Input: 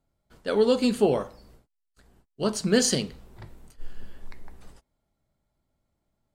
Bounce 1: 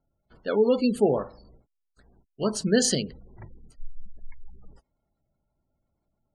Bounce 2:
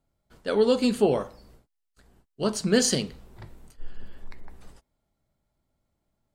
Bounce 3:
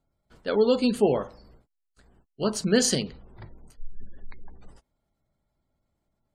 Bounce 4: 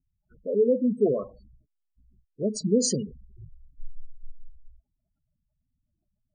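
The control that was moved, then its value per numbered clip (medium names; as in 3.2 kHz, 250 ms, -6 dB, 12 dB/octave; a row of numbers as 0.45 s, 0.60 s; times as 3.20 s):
spectral gate, under each frame's peak: -25 dB, -60 dB, -35 dB, -10 dB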